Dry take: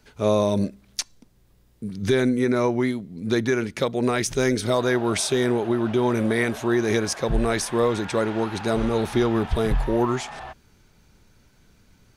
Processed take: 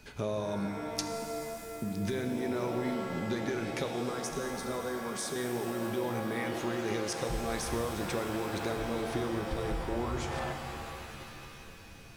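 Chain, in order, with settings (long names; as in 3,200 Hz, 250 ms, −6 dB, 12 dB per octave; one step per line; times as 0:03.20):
downward compressor 6 to 1, threshold −36 dBFS, peak gain reduction 18.5 dB
steady tone 2,500 Hz −64 dBFS
0:04.09–0:05.36: phaser with its sweep stopped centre 480 Hz, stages 8
reverb with rising layers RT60 3 s, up +7 semitones, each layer −2 dB, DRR 5.5 dB
level +2.5 dB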